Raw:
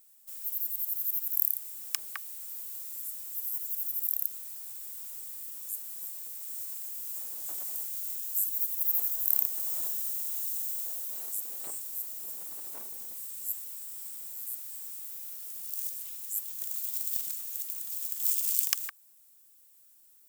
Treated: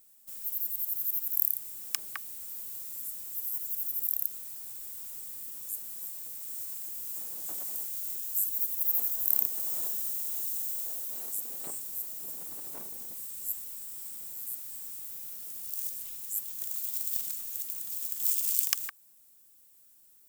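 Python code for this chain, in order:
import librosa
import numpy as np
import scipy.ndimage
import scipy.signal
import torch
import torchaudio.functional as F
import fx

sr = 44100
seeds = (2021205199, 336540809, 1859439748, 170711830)

y = fx.low_shelf(x, sr, hz=340.0, db=9.5)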